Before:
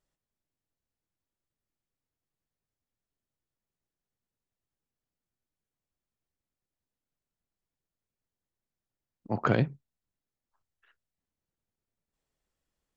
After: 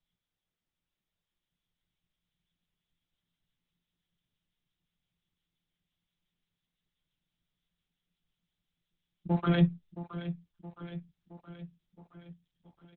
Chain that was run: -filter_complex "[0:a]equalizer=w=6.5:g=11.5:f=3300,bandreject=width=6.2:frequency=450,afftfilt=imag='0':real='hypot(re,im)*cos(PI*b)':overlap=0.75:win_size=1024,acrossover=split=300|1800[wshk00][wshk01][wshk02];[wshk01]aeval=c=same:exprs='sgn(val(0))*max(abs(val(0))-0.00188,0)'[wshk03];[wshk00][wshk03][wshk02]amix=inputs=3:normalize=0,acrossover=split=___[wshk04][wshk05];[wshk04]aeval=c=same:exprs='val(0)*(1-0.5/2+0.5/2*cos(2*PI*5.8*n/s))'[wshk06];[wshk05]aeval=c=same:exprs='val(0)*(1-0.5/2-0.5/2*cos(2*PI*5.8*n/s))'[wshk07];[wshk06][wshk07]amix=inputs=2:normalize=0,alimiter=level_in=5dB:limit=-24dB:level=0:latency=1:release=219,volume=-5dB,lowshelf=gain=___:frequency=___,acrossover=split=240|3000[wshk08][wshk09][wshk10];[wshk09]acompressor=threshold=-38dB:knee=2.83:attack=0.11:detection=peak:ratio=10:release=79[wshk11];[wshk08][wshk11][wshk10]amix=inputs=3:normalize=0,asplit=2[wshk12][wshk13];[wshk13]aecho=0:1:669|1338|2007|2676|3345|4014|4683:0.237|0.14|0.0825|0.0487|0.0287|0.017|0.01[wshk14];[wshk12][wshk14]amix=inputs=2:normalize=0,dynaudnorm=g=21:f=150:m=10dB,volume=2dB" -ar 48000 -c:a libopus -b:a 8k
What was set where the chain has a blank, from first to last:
830, 5.5, 310